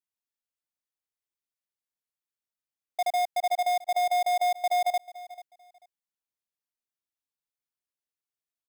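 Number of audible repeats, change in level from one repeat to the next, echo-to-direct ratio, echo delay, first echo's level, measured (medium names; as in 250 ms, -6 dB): 2, -13.0 dB, -18.0 dB, 440 ms, -18.0 dB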